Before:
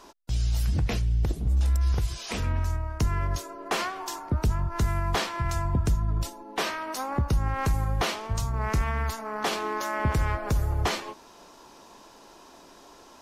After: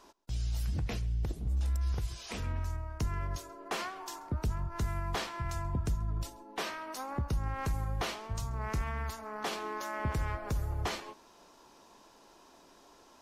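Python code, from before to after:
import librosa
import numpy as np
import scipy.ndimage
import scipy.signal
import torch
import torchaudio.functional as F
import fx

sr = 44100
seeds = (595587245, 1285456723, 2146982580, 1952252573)

y = x + 10.0 ** (-24.0 / 20.0) * np.pad(x, (int(134 * sr / 1000.0), 0))[:len(x)]
y = F.gain(torch.from_numpy(y), -8.0).numpy()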